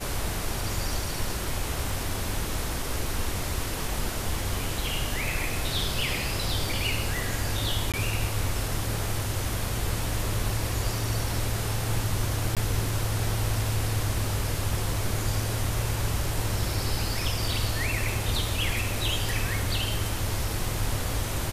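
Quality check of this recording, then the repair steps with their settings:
7.92–7.94 gap 17 ms
12.55–12.57 gap 17 ms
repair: interpolate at 7.92, 17 ms; interpolate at 12.55, 17 ms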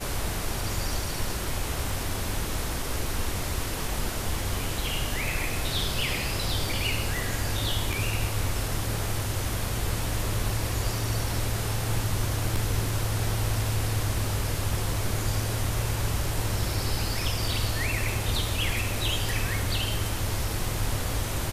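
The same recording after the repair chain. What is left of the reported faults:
none

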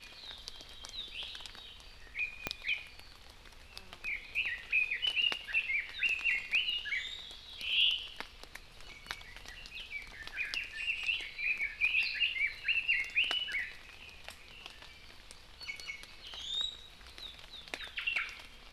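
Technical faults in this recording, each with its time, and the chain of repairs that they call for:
2.47 pop -16 dBFS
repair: de-click

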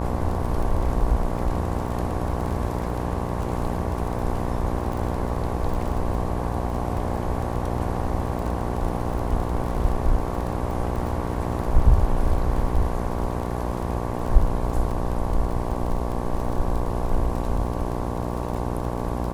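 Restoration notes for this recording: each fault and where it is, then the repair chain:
buzz 60 Hz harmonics 19 -28 dBFS
crackle 24/s -29 dBFS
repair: de-click; de-hum 60 Hz, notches 19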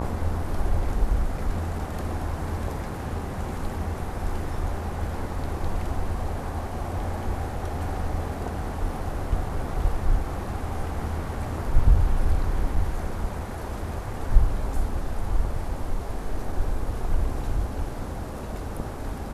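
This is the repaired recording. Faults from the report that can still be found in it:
none

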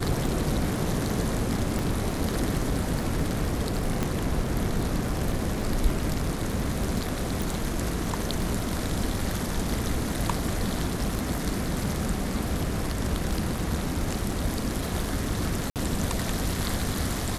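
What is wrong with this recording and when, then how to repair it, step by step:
crackle 21/s -32 dBFS
1.79 pop
4.03 pop -13 dBFS
7.42 pop
15.7–15.76 gap 58 ms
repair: de-click; interpolate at 15.7, 58 ms

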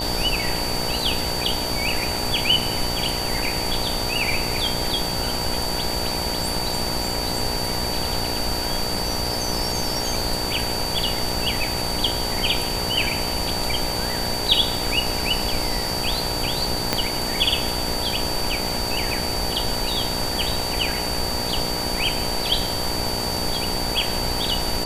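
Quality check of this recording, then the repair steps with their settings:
buzz 60 Hz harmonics 16 -30 dBFS
tone 4600 Hz -27 dBFS
16.93 pop -3 dBFS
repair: de-click; de-hum 60 Hz, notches 16; notch 4600 Hz, Q 30

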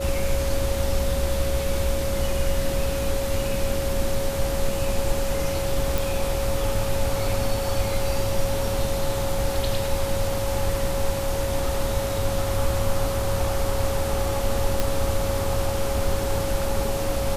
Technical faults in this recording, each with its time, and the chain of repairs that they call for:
tone 550 Hz -27 dBFS
5.98 pop
14.8 pop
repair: de-click; notch 550 Hz, Q 30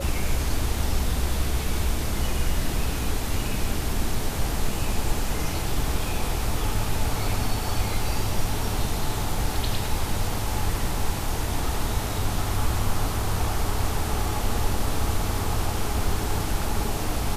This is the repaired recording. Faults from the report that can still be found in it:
none

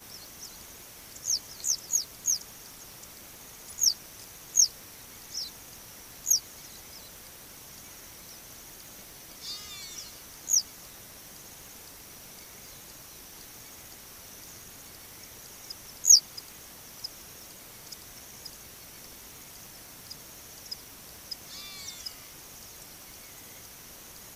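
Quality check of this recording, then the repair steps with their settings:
crackle 31/s -40 dBFS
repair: de-click

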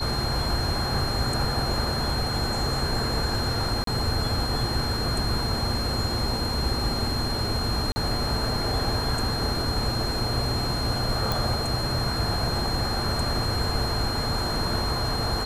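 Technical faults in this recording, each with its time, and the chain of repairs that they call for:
tone 4200 Hz -30 dBFS
3.84–3.87 gap 33 ms
7.92–7.96 gap 40 ms
11.32 pop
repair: de-click; notch 4200 Hz, Q 30; interpolate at 3.84, 33 ms; interpolate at 7.92, 40 ms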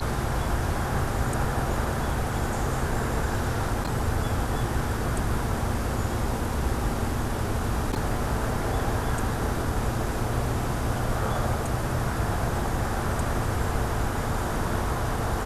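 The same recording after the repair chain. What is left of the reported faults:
none

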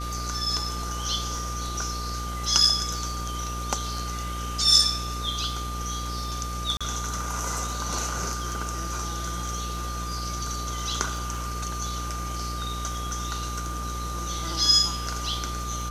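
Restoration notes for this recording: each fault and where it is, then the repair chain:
buzz 60 Hz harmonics 14 -33 dBFS
crackle 26/s -37 dBFS
tone 1200 Hz -34 dBFS
6.77–6.81 gap 36 ms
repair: de-click; notch 1200 Hz, Q 30; de-hum 60 Hz, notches 14; interpolate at 6.77, 36 ms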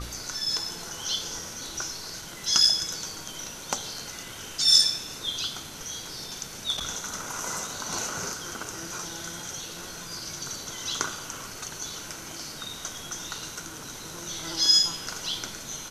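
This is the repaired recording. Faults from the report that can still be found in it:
none

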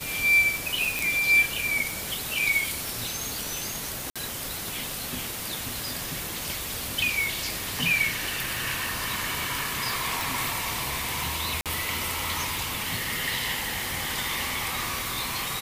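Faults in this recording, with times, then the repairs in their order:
tick 45 rpm
0.99 pop
4.1–4.16 gap 56 ms
10.21 pop
11.61–11.66 gap 47 ms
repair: de-click; interpolate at 4.1, 56 ms; interpolate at 11.61, 47 ms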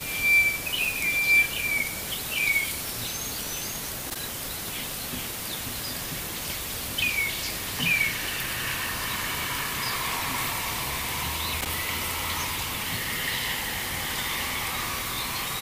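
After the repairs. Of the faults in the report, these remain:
none

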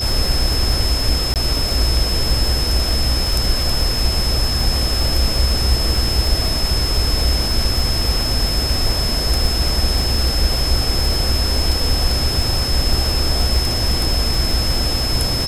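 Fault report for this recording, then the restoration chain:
crackle 49/s -22 dBFS
tone 5200 Hz -21 dBFS
1.34–1.36 gap 18 ms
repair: de-click; notch 5200 Hz, Q 30; interpolate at 1.34, 18 ms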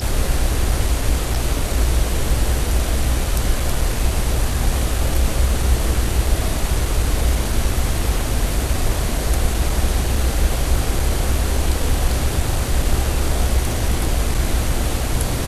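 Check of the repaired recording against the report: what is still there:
none

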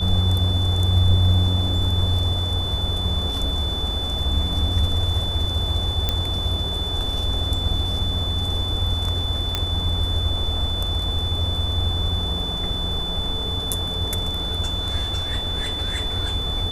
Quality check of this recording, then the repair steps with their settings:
tone 3500 Hz -26 dBFS
6.09 pop -7 dBFS
9.55 pop -7 dBFS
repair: de-click; notch 3500 Hz, Q 30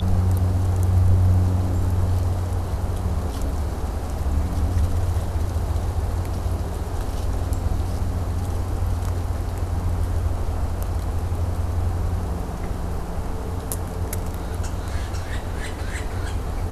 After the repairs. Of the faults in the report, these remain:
none

